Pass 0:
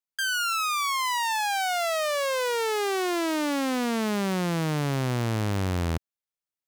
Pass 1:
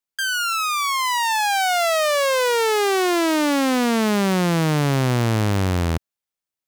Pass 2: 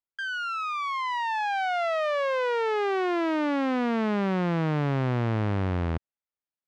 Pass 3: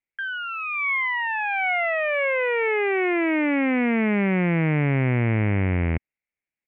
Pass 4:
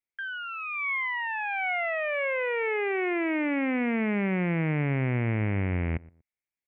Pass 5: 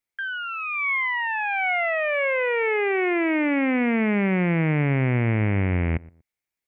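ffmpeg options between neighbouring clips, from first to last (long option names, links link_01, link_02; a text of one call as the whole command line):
ffmpeg -i in.wav -af "dynaudnorm=framelen=360:gausssize=7:maxgain=3.5dB,volume=4dB" out.wav
ffmpeg -i in.wav -af "lowpass=2300,volume=-6.5dB" out.wav
ffmpeg -i in.wav -af "firequalizer=gain_entry='entry(240,0);entry(1200,-9);entry(2200,11);entry(4200,-30)':delay=0.05:min_phase=1,volume=5dB" out.wav
ffmpeg -i in.wav -filter_complex "[0:a]asplit=2[link_01][link_02];[link_02]adelay=119,lowpass=frequency=1200:poles=1,volume=-21.5dB,asplit=2[link_03][link_04];[link_04]adelay=119,lowpass=frequency=1200:poles=1,volume=0.25[link_05];[link_01][link_03][link_05]amix=inputs=3:normalize=0,volume=-5.5dB" out.wav
ffmpeg -i in.wav -af "acontrast=32" out.wav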